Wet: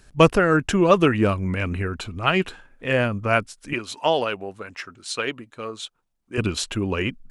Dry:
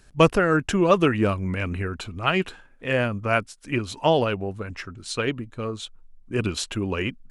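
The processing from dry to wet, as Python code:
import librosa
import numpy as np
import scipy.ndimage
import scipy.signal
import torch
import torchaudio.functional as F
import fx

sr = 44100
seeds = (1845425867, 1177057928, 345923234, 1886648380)

y = fx.highpass(x, sr, hz=570.0, slope=6, at=(3.73, 6.38))
y = F.gain(torch.from_numpy(y), 2.0).numpy()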